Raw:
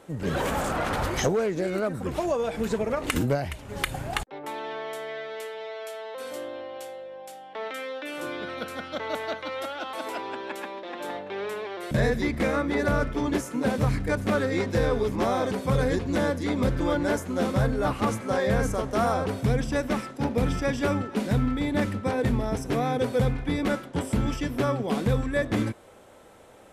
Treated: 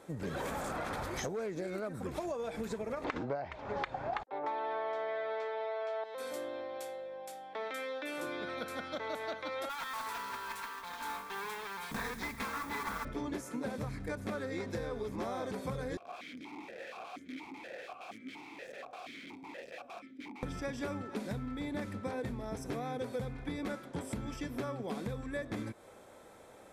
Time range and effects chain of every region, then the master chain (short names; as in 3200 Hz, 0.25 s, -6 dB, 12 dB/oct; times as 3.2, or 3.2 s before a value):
3.04–6.04 LPF 5300 Hz 24 dB/oct + bell 830 Hz +14.5 dB 2.4 oct
9.69–13.05 minimum comb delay 4.4 ms + resonant low shelf 780 Hz -6.5 dB, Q 3 + modulation noise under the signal 15 dB
15.97–20.43 wrapped overs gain 25 dB + vowel sequencer 4.2 Hz
whole clip: compressor, threshold -31 dBFS; low shelf 110 Hz -5 dB; notch 2900 Hz, Q 10; gain -3.5 dB